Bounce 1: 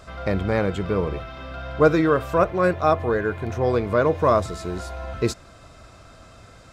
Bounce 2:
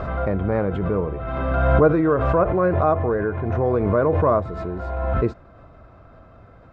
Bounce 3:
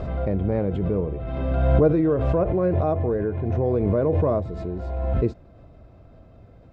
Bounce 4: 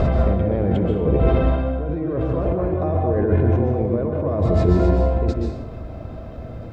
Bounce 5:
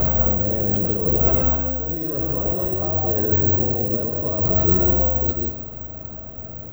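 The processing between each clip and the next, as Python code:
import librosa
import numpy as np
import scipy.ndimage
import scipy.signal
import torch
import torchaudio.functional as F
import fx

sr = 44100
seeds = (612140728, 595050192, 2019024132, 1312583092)

y1 = scipy.signal.sosfilt(scipy.signal.butter(2, 1300.0, 'lowpass', fs=sr, output='sos'), x)
y1 = fx.pre_swell(y1, sr, db_per_s=27.0)
y2 = fx.peak_eq(y1, sr, hz=1300.0, db=-14.0, octaves=1.3)
y3 = fx.over_compress(y2, sr, threshold_db=-29.0, ratio=-1.0)
y3 = fx.rev_plate(y3, sr, seeds[0], rt60_s=0.77, hf_ratio=0.75, predelay_ms=115, drr_db=1.0)
y3 = y3 * 10.0 ** (7.0 / 20.0)
y4 = (np.kron(scipy.signal.resample_poly(y3, 1, 2), np.eye(2)[0]) * 2)[:len(y3)]
y4 = y4 * 10.0 ** (-4.5 / 20.0)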